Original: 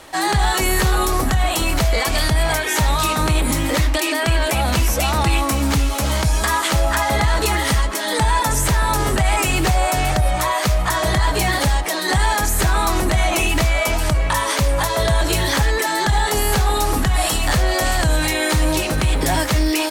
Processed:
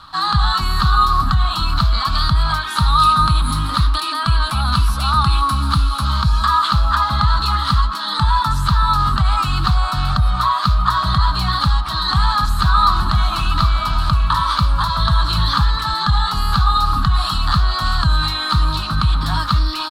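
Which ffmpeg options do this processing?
ffmpeg -i in.wav -filter_complex "[0:a]asettb=1/sr,asplit=3[link_01][link_02][link_03];[link_01]atrim=end=2.704[link_04];[link_02]atrim=start=2.7:end=6.05,asetpts=PTS-STARTPTS,afade=type=in:duration=0.004:curve=qsin,afade=type=out:start_time=3.346:duration=0.004:curve=qsin,equalizer=frequency=10000:width_type=o:width=0.24:gain=13.5[link_05];[link_03]atrim=start=6.046[link_06];[link_04][link_05]acrossfade=duration=0.004:curve1=hsin:curve2=qsin[link_07];[link_07][link_06]acrossfade=duration=0.004:curve1=qsin:curve2=hsin,asettb=1/sr,asplit=3[link_08][link_09][link_10];[link_08]atrim=end=11.104[link_11];[link_09]atrim=start=11.1:end=15.94,asetpts=PTS-STARTPTS,afade=type=in:duration=0.004:curve=qsin,afade=type=out:start_time=4.836:duration=0.004:curve=qsin,aecho=1:1:770:0.282,atrim=end_sample=213444[link_12];[link_10]atrim=start=15.936[link_13];[link_11][link_12]acrossfade=duration=0.004:curve1=hsin:curve2=qsin[link_14];[link_14][link_13]acrossfade=duration=0.004:curve1=qsin:curve2=hsin,firequalizer=gain_entry='entry(170,0);entry(430,-28);entry(1200,10);entry(2000,-18);entry(4100,5);entry(5900,-18)':delay=0.05:min_phase=1,volume=2.5dB" out.wav

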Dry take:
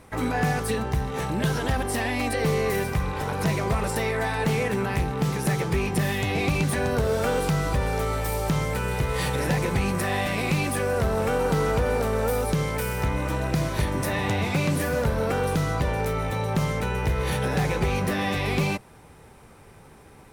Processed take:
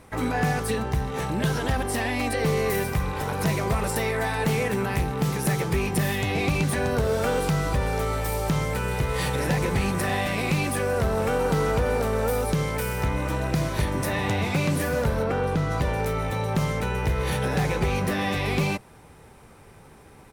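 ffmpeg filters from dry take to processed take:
ffmpeg -i in.wav -filter_complex "[0:a]asettb=1/sr,asplit=3[link_01][link_02][link_03];[link_01]atrim=end=2.574[link_04];[link_02]atrim=start=2.57:end=6.16,asetpts=PTS-STARTPTS,afade=type=in:duration=0.004:curve=qsin,afade=type=out:start_time=3.586:duration=0.004:curve=qsin,equalizer=frequency=16000:width_type=o:width=0.98:gain=5.5[link_05];[link_03]atrim=start=6.156[link_06];[link_04][link_05]acrossfade=duration=0.004:curve1=hsin:curve2=qsin[link_07];[link_07][link_06]acrossfade=duration=0.004:curve1=qsin:curve2=hsin,asplit=2[link_08][link_09];[link_09]afade=type=in:start_time=9.01:duration=0.01,afade=type=out:start_time=9.55:duration=0.01,aecho=0:1:590|1180:0.281838|0.0281838[link_10];[link_08][link_10]amix=inputs=2:normalize=0,asplit=3[link_11][link_12][link_13];[link_11]afade=type=out:start_time=15.22:duration=0.02[link_14];[link_12]lowpass=frequency=2500:poles=1,afade=type=in:start_time=15.22:duration=0.02,afade=type=out:start_time=15.7:duration=0.02[link_15];[link_13]afade=type=in:start_time=15.7:duration=0.02[link_16];[link_14][link_15][link_16]amix=inputs=3:normalize=0" out.wav

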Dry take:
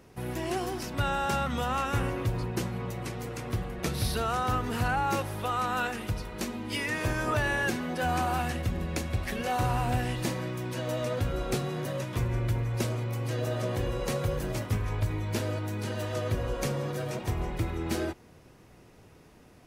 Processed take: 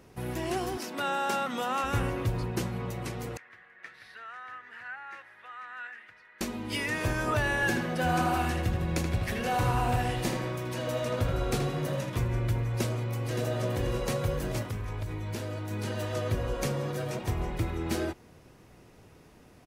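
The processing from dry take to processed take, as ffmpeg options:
ffmpeg -i in.wav -filter_complex "[0:a]asettb=1/sr,asplit=3[link_01][link_02][link_03];[link_01]atrim=end=0.774[link_04];[link_02]atrim=start=0.77:end=1.84,asetpts=PTS-STARTPTS,afade=type=in:duration=0.004:curve=qsin,afade=type=out:start_time=1.066:duration=0.004:curve=qsin,highpass=frequency=220:width=0.5412,highpass=frequency=220:width=1.3066[link_05];[link_03]atrim=start=1.836[link_06];[link_04][link_05]acrossfade=duration=0.004:curve1=hsin:curve2=qsin[link_07];[link_07][link_06]acrossfade=duration=0.004:curve1=qsin:curve2=hsin,asettb=1/sr,asplit=3[link_08][link_09][link_10];[link_08]atrim=end=3.374[link_11];[link_09]atrim=start=3.37:end=6.41,asetpts=PTS-STARTPTS,afade=type=in:duration=0.004:curve=qsin,afade=type=out:start_time=3.036:duration=0.004:curve=qsin,bandpass=frequency=1800:width_type=q:width=5.8[link_12];[link_10]atrim=start=6.406[link_13];[link_11][link_12]acrossfade=duration=0.004:curve1=hsin:curve2=qsin[link_14];[link_14][link_13]acrossfade=duration=0.004:curve1=qsin:curve2=hsin,asettb=1/sr,asplit=3[link_15][link_16][link_17];[link_15]atrim=end=7.544[link_18];[link_16]atrim=start=7.54:end=12.1,asetpts=PTS-STARTPTS,afade=type=in:duration=0.004:curve=qsin,afade=type=out:start_time=4.556:duration=0.004:curve=qsin,asplit=2[link_19][link_20];[link_20]adelay=79,lowpass=frequency=3500:poles=1,volume=-4.5dB,asplit=2[link_21][link_22];[link_22]adelay=79,lowpass=frequency=3500:poles=1,volume=0.53,asplit=2[link_23][link_24];[link_24]adelay=79,lowpass=frequency=3500:poles=1,volume=0.53,asplit=2[link_25][link_26];[link_26]adelay=79,lowpass=frequency=3500:poles=1,volume=0.53,asplit=2[link_27][link_28];[link_28]adelay=79,lowpass=frequency=3500:poles=1,volume=0.53,asplit=2[link_29][link_30];[link_30]adelay=79,lowpass=frequency=3500:poles=1,volume=0.53,asplit=2[link_31][link_32];[link_32]adelay=79,lowpass=frequency=3500:poles=1,volume=0.53[link_33];[link_19][link_21][link_23][link_25][link_27][link_29][link_31][link_33]amix=inputs=8:normalize=0,atrim=end_sample=201096[link_34];[link_17]atrim=start=12.096[link_35];[link_18][link_34]acrossfade=duration=0.004:curve1=hsin:curve2=qsin[link_36];[link_36][link_35]acrossfade=duration=0.004:curve1=qsin:curve2=hsin,asplit=2[link_37][link_38];[link_38]afade=type=in:start_time=12.68:duration=0.01,afade=type=out:start_time=13.41:duration=0.01,aecho=0:1:570|1140|1710|2280|2850|3420|3990:0.398107|0.218959|0.120427|0.0662351|0.0364293|0.0200361|0.0110199[link_39];[link_37][link_39]amix=inputs=2:normalize=0,asettb=1/sr,asplit=3[link_40][link_41][link_42];[link_40]atrim=end=14.624[link_43];[link_41]atrim=start=14.62:end=15.71,asetpts=PTS-STARTPTS,afade=type=in:duration=0.004:curve=qsin,afade=type=out:start_time=1.086:duration=0.004:curve=qsin,acompressor=threshold=-32dB:ratio=3:attack=3.2:release=140:knee=1:detection=peak[link_44];[link_42]atrim=start=15.706[link_45];[link_43][link_44]acrossfade=duration=0.004:curve1=hsin:curve2=qsin[link_46];[link_46][link_45]acrossfade=duration=0.004:curve1=qsin:curve2=hsin" out.wav

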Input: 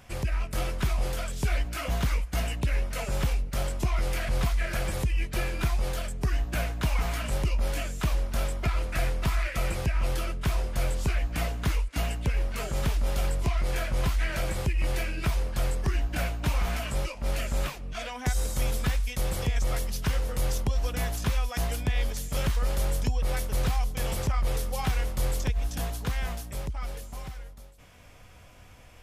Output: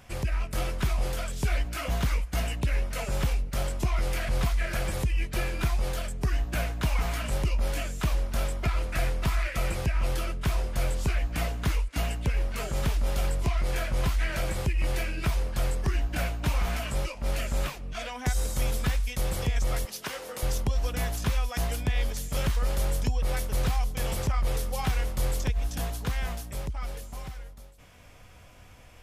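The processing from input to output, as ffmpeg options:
ffmpeg -i in.wav -filter_complex "[0:a]asettb=1/sr,asplit=3[link_01][link_02][link_03];[link_01]atrim=end=19.854[link_04];[link_02]atrim=start=19.85:end=20.43,asetpts=PTS-STARTPTS,afade=type=in:duration=0.004:curve=qsin,afade=type=out:start_time=0.576:duration=0.004:curve=qsin,highpass=340[link_05];[link_03]atrim=start=20.426[link_06];[link_04][link_05]acrossfade=duration=0.004:curve1=hsin:curve2=qsin[link_07];[link_07][link_06]acrossfade=duration=0.004:curve1=qsin:curve2=hsin" out.wav

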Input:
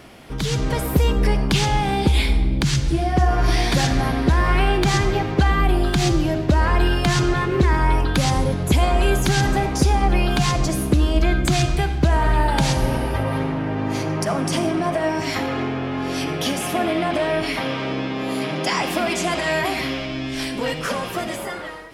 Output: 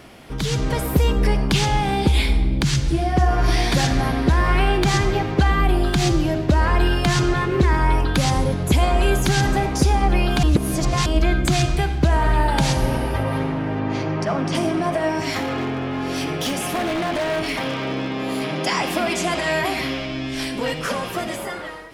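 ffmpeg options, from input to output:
ffmpeg -i in.wav -filter_complex "[0:a]asettb=1/sr,asplit=3[link_01][link_02][link_03];[link_01]atrim=end=13.794[link_04];[link_02]atrim=start=13.79:end=14.55,asetpts=PTS-STARTPTS,afade=type=in:duration=0.004:curve=qsin,afade=type=out:start_time=0.756:duration=0.004:curve=qsin,lowpass=4300[link_05];[link_03]atrim=start=14.546[link_06];[link_04][link_05]acrossfade=duration=0.004:curve1=hsin:curve2=qsin[link_07];[link_07][link_06]acrossfade=duration=0.004:curve1=qsin:curve2=hsin,asettb=1/sr,asplit=3[link_08][link_09][link_10];[link_08]atrim=end=15.364[link_11];[link_09]atrim=start=15.36:end=18.48,asetpts=PTS-STARTPTS,afade=type=in:duration=0.004:curve=qsin,afade=type=out:start_time=3.116:duration=0.004:curve=qsin,aeval=exprs='0.133*(abs(mod(val(0)/0.133+3,4)-2)-1)':channel_layout=same[link_12];[link_10]atrim=start=18.476[link_13];[link_11][link_12]acrossfade=duration=0.004:curve1=hsin:curve2=qsin[link_14];[link_14][link_13]acrossfade=duration=0.004:curve1=qsin:curve2=hsin,asplit=3[link_15][link_16][link_17];[link_15]atrim=end=10.432[link_18];[link_16]atrim=start=10.428:end=11.062,asetpts=PTS-STARTPTS,areverse[link_19];[link_17]atrim=start=11.058[link_20];[link_18][link_19]acrossfade=duration=0.004:curve1=hsin:curve2=hsin[link_21];[link_21][link_20]acrossfade=duration=0.004:curve1=hsin:curve2=hsin" out.wav

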